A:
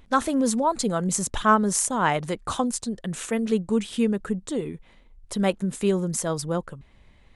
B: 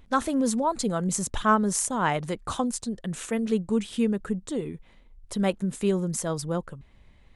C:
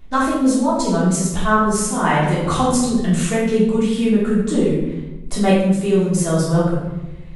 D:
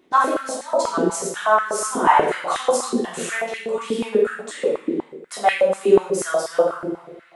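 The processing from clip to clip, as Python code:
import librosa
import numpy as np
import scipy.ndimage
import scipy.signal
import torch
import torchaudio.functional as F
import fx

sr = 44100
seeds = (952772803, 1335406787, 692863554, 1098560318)

y1 = fx.low_shelf(x, sr, hz=220.0, db=3.0)
y1 = F.gain(torch.from_numpy(y1), -3.0).numpy()
y2 = fx.room_shoebox(y1, sr, seeds[0], volume_m3=420.0, walls='mixed', distance_m=3.3)
y2 = fx.rider(y2, sr, range_db=10, speed_s=0.5)
y3 = fx.rev_fdn(y2, sr, rt60_s=2.5, lf_ratio=1.0, hf_ratio=0.65, size_ms=26.0, drr_db=17.0)
y3 = fx.filter_held_highpass(y3, sr, hz=8.2, low_hz=340.0, high_hz=1900.0)
y3 = F.gain(torch.from_numpy(y3), -4.0).numpy()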